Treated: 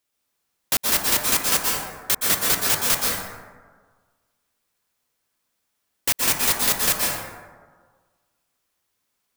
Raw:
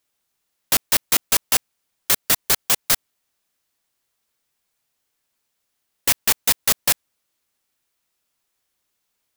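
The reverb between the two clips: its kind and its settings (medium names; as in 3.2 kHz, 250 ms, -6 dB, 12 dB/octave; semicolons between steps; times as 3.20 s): plate-style reverb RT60 1.5 s, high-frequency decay 0.4×, pre-delay 110 ms, DRR -3 dB; trim -3.5 dB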